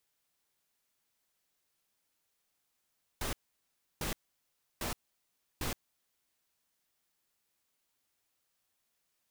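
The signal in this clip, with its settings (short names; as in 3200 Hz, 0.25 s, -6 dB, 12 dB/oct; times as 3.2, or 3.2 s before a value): noise bursts pink, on 0.12 s, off 0.68 s, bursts 4, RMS -35.5 dBFS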